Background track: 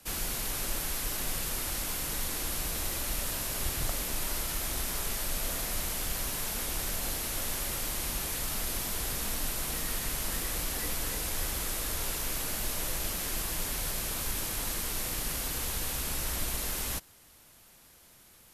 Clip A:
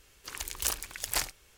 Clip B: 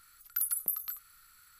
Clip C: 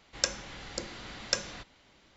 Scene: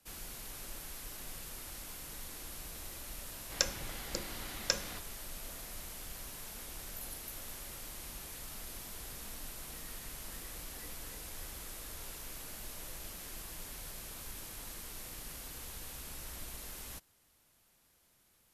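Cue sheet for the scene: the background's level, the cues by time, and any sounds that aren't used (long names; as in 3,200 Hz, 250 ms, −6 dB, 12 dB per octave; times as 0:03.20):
background track −12.5 dB
0:03.37: mix in C −2.5 dB
0:06.60: mix in B −17.5 dB
not used: A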